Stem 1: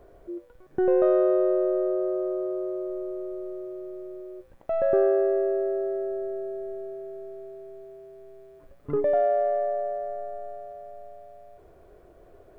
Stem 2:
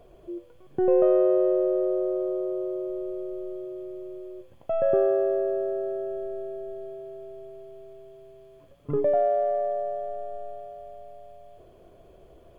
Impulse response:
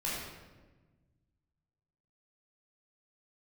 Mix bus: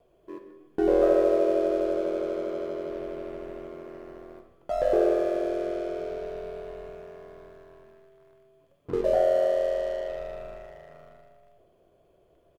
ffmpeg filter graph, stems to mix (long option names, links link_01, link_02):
-filter_complex "[0:a]aeval=exprs='val(0)*sin(2*PI*43*n/s)':channel_layout=same,aeval=exprs='sgn(val(0))*max(abs(val(0))-0.0075,0)':channel_layout=same,volume=-0.5dB,asplit=2[link_01][link_02];[link_02]volume=-7.5dB[link_03];[1:a]adelay=1.6,volume=-10dB,asplit=2[link_04][link_05];[link_05]volume=-16dB[link_06];[2:a]atrim=start_sample=2205[link_07];[link_03][link_06]amix=inputs=2:normalize=0[link_08];[link_08][link_07]afir=irnorm=-1:irlink=0[link_09];[link_01][link_04][link_09]amix=inputs=3:normalize=0,lowshelf=frequency=65:gain=-11"